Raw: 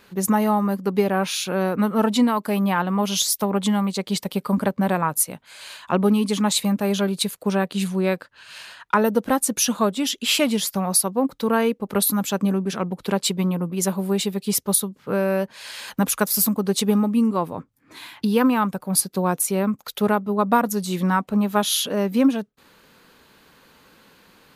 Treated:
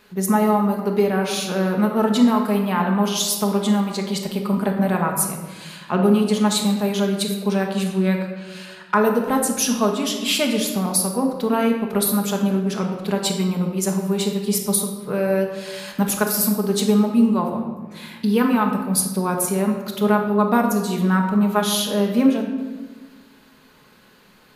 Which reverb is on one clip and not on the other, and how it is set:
rectangular room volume 1,000 cubic metres, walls mixed, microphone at 1.4 metres
level −2 dB

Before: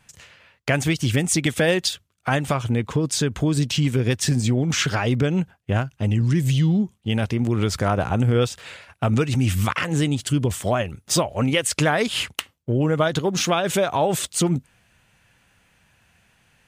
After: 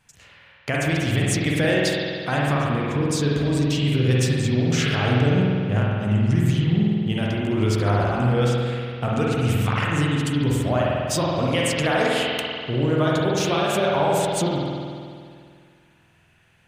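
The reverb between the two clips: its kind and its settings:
spring reverb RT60 2.2 s, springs 48 ms, chirp 25 ms, DRR −4.5 dB
level −5 dB

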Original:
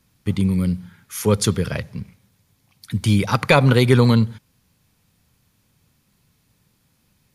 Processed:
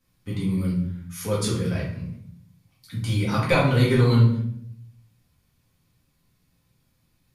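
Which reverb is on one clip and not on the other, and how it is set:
rectangular room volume 130 cubic metres, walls mixed, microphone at 2 metres
level −13 dB

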